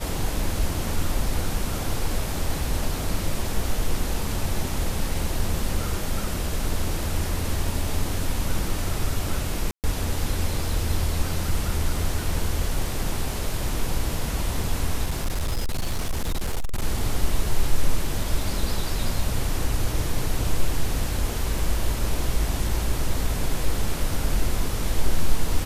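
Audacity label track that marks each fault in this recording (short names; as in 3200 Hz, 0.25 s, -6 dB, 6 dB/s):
9.710000	9.840000	gap 0.128 s
15.060000	16.840000	clipped -20.5 dBFS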